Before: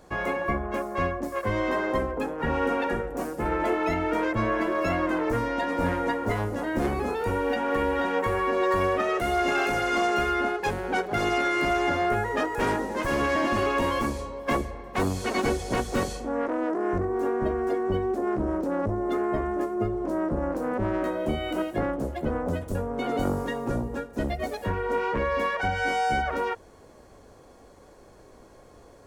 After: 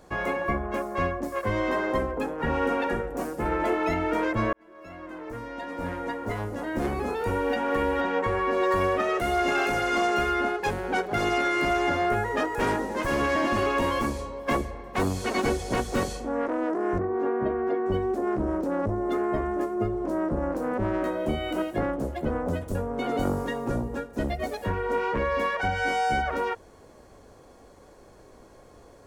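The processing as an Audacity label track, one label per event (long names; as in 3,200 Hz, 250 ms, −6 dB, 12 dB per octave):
4.530000	7.370000	fade in
8.010000	8.510000	high-frequency loss of the air 61 metres
16.990000	17.860000	band-pass filter 100–2,800 Hz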